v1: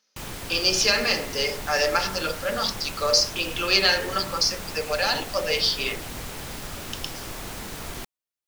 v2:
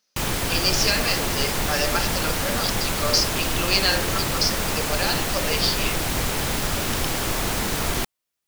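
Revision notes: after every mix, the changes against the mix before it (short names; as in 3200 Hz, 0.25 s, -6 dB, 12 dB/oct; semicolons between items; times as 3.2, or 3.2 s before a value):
speech: send -9.5 dB; background +11.0 dB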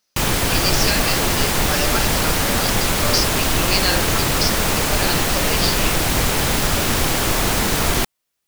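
background +6.0 dB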